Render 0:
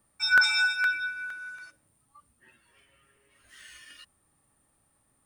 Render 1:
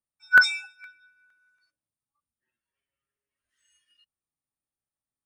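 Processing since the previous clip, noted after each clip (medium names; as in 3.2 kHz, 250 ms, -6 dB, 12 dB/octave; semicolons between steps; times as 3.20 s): spectral noise reduction 17 dB; upward expansion 1.5:1, over -47 dBFS; trim +5.5 dB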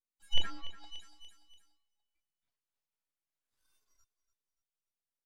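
full-wave rectifier; feedback delay 290 ms, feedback 40%, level -14.5 dB; low-pass that closes with the level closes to 2.1 kHz, closed at -26 dBFS; trim -5 dB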